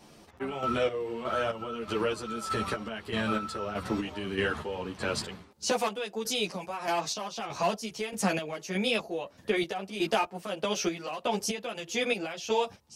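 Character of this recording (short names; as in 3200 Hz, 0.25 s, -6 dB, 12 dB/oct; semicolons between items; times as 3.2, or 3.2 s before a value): chopped level 1.6 Hz, depth 60%, duty 40%; a shimmering, thickened sound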